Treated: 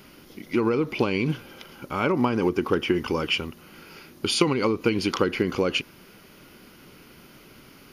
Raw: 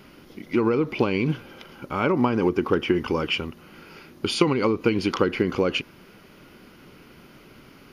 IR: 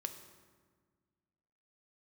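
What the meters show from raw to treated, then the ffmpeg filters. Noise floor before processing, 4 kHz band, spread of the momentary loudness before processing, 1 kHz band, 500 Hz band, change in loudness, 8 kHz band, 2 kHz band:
-50 dBFS, +1.5 dB, 11 LU, -1.0 dB, -1.5 dB, -1.0 dB, +5.0 dB, 0.0 dB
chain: -af "highshelf=f=4600:g=9,volume=0.841"

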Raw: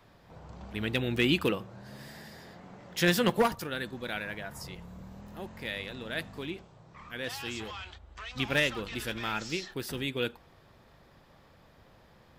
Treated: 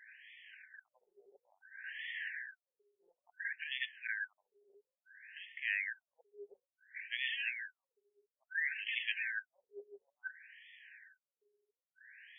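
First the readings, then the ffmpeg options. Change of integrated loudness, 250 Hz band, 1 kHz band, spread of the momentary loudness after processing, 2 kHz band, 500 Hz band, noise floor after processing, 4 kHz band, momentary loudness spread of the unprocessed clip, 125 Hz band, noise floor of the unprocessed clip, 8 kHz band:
-7.5 dB, under -40 dB, under -35 dB, 21 LU, -3.5 dB, -26.0 dB, under -85 dBFS, -10.5 dB, 21 LU, under -40 dB, -59 dBFS, under -35 dB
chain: -af "afftfilt=real='re*(1-between(b*sr/4096,410,1500))':imag='im*(1-between(b*sr/4096,410,1500))':win_size=4096:overlap=0.75,equalizer=f=99:w=1.1:g=-12.5,areverse,acompressor=threshold=0.00708:ratio=4,areverse,afftfilt=real='re*between(b*sr/1024,550*pow(2500/550,0.5+0.5*sin(2*PI*0.58*pts/sr))/1.41,550*pow(2500/550,0.5+0.5*sin(2*PI*0.58*pts/sr))*1.41)':imag='im*between(b*sr/1024,550*pow(2500/550,0.5+0.5*sin(2*PI*0.58*pts/sr))/1.41,550*pow(2500/550,0.5+0.5*sin(2*PI*0.58*pts/sr))*1.41)':win_size=1024:overlap=0.75,volume=4.22"

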